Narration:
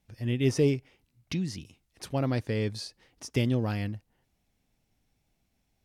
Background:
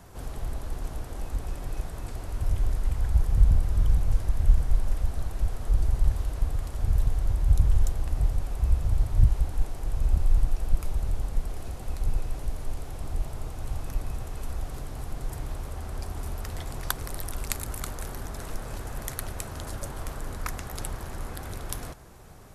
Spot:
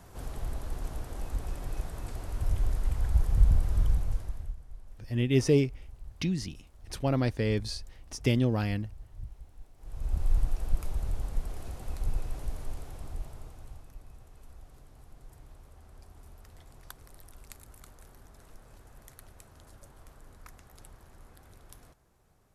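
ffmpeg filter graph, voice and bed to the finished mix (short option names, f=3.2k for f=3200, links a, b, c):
-filter_complex "[0:a]adelay=4900,volume=1dB[a];[1:a]volume=16.5dB,afade=t=out:st=3.79:d=0.76:silence=0.0944061,afade=t=in:st=9.77:d=0.53:silence=0.112202,afade=t=out:st=12.55:d=1.34:silence=0.199526[b];[a][b]amix=inputs=2:normalize=0"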